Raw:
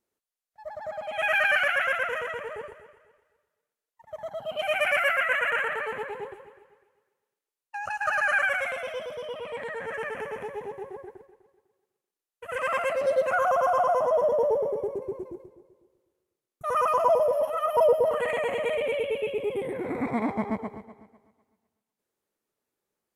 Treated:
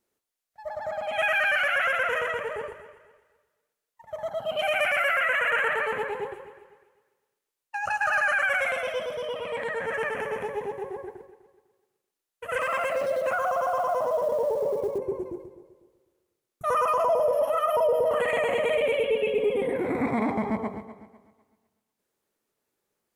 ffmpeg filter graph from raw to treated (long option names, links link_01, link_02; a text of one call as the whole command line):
ffmpeg -i in.wav -filter_complex "[0:a]asettb=1/sr,asplit=3[link_01][link_02][link_03];[link_01]atrim=end=12.604[link_04];[link_02]atrim=start=12.6:end=14.98,asetpts=PTS-STARTPTS,afade=type=in:duration=0.004:curve=qsin,afade=type=out:start_time=2.376:duration=0.004:curve=qsin,acrusher=bits=8:mode=log:mix=0:aa=0.000001,acompressor=threshold=-27dB:ratio=5:attack=3.2:release=140:knee=1:detection=peak[link_05];[link_03]atrim=start=14.976[link_06];[link_04][link_05]acrossfade=duration=0.004:curve1=hsin:curve2=qsin[link_07];[link_07][link_06]acrossfade=duration=0.004:curve1=qsin:curve2=hsin,asettb=1/sr,asplit=3[link_08][link_09][link_10];[link_08]atrim=end=19.044[link_11];[link_09]atrim=start=19.04:end=19.76,asetpts=PTS-STARTPTS,afade=type=in:duration=0.004:curve=qsin,afade=type=out:start_time=0.716:duration=0.004:curve=qsin,highshelf=frequency=4700:gain=-6,aecho=1:1:4.2:0.69,atrim=end_sample=31752[link_12];[link_10]atrim=start=19.756[link_13];[link_11][link_12]acrossfade=duration=0.004:curve1=hsin:curve2=qsin[link_14];[link_14][link_13]acrossfade=duration=0.004:curve1=qsin:curve2=hsin,bandreject=frequency=48.03:width_type=h:width=4,bandreject=frequency=96.06:width_type=h:width=4,bandreject=frequency=144.09:width_type=h:width=4,bandreject=frequency=192.12:width_type=h:width=4,bandreject=frequency=240.15:width_type=h:width=4,bandreject=frequency=288.18:width_type=h:width=4,bandreject=frequency=336.21:width_type=h:width=4,bandreject=frequency=384.24:width_type=h:width=4,bandreject=frequency=432.27:width_type=h:width=4,bandreject=frequency=480.3:width_type=h:width=4,bandreject=frequency=528.33:width_type=h:width=4,bandreject=frequency=576.36:width_type=h:width=4,bandreject=frequency=624.39:width_type=h:width=4,bandreject=frequency=672.42:width_type=h:width=4,bandreject=frequency=720.45:width_type=h:width=4,bandreject=frequency=768.48:width_type=h:width=4,bandreject=frequency=816.51:width_type=h:width=4,bandreject=frequency=864.54:width_type=h:width=4,bandreject=frequency=912.57:width_type=h:width=4,bandreject=frequency=960.6:width_type=h:width=4,bandreject=frequency=1008.63:width_type=h:width=4,bandreject=frequency=1056.66:width_type=h:width=4,bandreject=frequency=1104.69:width_type=h:width=4,bandreject=frequency=1152.72:width_type=h:width=4,bandreject=frequency=1200.75:width_type=h:width=4,bandreject=frequency=1248.78:width_type=h:width=4,bandreject=frequency=1296.81:width_type=h:width=4,bandreject=frequency=1344.84:width_type=h:width=4,alimiter=limit=-21dB:level=0:latency=1:release=39,volume=4.5dB" out.wav